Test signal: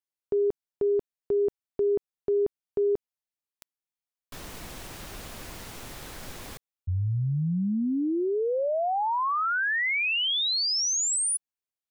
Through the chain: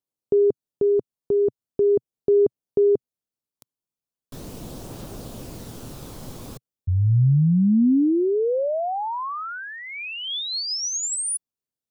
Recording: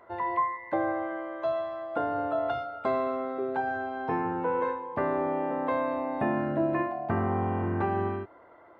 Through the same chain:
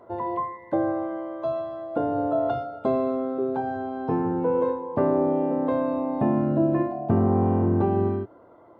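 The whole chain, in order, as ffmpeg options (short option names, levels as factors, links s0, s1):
-af "aphaser=in_gain=1:out_gain=1:delay=1:decay=0.2:speed=0.4:type=triangular,equalizer=f=125:t=o:w=1:g=7,equalizer=f=250:t=o:w=1:g=6,equalizer=f=500:t=o:w=1:g=5,equalizer=f=2000:t=o:w=1:g=-10"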